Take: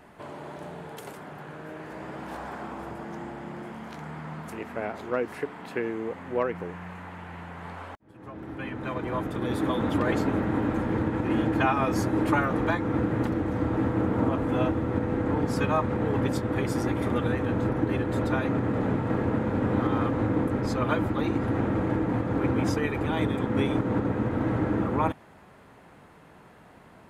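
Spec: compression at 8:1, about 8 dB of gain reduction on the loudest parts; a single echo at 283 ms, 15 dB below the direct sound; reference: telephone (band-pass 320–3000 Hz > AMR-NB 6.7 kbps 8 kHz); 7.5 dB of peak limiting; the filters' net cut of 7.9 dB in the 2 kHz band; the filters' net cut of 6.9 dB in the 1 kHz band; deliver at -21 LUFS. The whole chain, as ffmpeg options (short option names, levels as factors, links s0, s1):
-af "equalizer=f=1000:t=o:g=-7,equalizer=f=2000:t=o:g=-7,acompressor=threshold=0.0316:ratio=8,alimiter=level_in=1.58:limit=0.0631:level=0:latency=1,volume=0.631,highpass=320,lowpass=3000,aecho=1:1:283:0.178,volume=12.6" -ar 8000 -c:a libopencore_amrnb -b:a 6700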